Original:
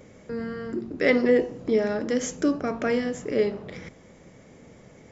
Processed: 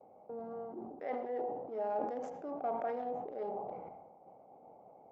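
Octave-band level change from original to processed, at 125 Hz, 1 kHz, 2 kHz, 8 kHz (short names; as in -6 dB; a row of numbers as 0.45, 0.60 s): -20.5 dB, -0.5 dB, -25.0 dB, n/a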